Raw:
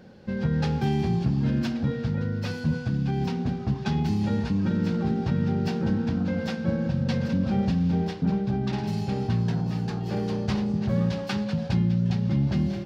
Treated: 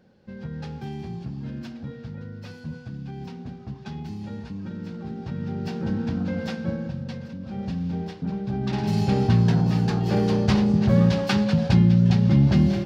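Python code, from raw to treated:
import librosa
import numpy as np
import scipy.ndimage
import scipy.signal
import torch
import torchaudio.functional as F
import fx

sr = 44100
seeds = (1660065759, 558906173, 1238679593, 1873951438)

y = fx.gain(x, sr, db=fx.line((4.99, -9.5), (6.02, -0.5), (6.59, -0.5), (7.38, -12.0), (7.73, -4.5), (8.33, -4.5), (9.02, 6.5)))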